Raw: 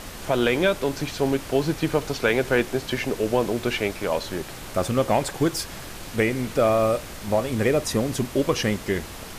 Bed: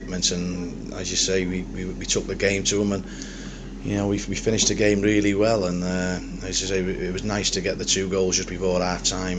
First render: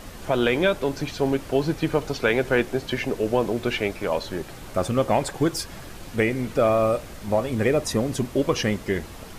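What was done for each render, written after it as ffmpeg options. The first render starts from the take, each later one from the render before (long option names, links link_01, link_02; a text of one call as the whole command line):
ffmpeg -i in.wav -af "afftdn=noise_reduction=6:noise_floor=-38" out.wav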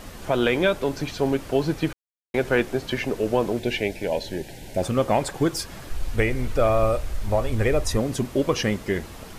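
ffmpeg -i in.wav -filter_complex "[0:a]asettb=1/sr,asplit=3[link_01][link_02][link_03];[link_01]atrim=end=3.594[link_04];[link_02]atrim=start=3.59:end=4.83,asetpts=PTS-STARTPTS,afade=type=in:duration=0.004:curve=qsin,afade=type=out:start_time=1.236:duration=0.004:curve=qsin,asuperstop=centerf=1200:order=4:qfactor=1.6[link_05];[link_03]atrim=start=4.826[link_06];[link_04][link_05]acrossfade=duration=0.004:curve1=hsin:curve2=qsin[link_07];[link_07][link_06]acrossfade=duration=0.004:curve1=qsin:curve2=hsin,asplit=3[link_08][link_09][link_10];[link_08]afade=type=out:start_time=5.89:duration=0.02[link_11];[link_09]asubboost=boost=9:cutoff=61,afade=type=in:start_time=5.89:duration=0.02,afade=type=out:start_time=7.97:duration=0.02[link_12];[link_10]afade=type=in:start_time=7.97:duration=0.02[link_13];[link_11][link_12][link_13]amix=inputs=3:normalize=0,asplit=3[link_14][link_15][link_16];[link_14]atrim=end=1.93,asetpts=PTS-STARTPTS,afade=type=out:start_time=1.926:duration=0.004:curve=hsin[link_17];[link_15]atrim=start=1.93:end=2.34,asetpts=PTS-STARTPTS,volume=0[link_18];[link_16]atrim=start=2.34,asetpts=PTS-STARTPTS,afade=type=in:duration=0.004:curve=hsin[link_19];[link_17][link_18][link_19]concat=n=3:v=0:a=1" out.wav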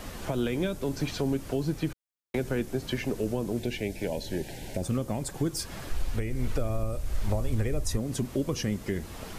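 ffmpeg -i in.wav -filter_complex "[0:a]acrossover=split=310|5400[link_01][link_02][link_03];[link_02]acompressor=threshold=-33dB:ratio=6[link_04];[link_01][link_04][link_03]amix=inputs=3:normalize=0,alimiter=limit=-18dB:level=0:latency=1:release=381" out.wav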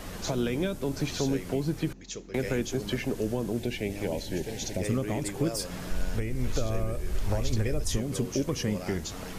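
ffmpeg -i in.wav -i bed.wav -filter_complex "[1:a]volume=-16.5dB[link_01];[0:a][link_01]amix=inputs=2:normalize=0" out.wav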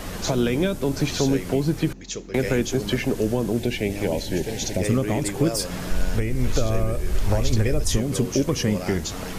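ffmpeg -i in.wav -af "volume=7dB" out.wav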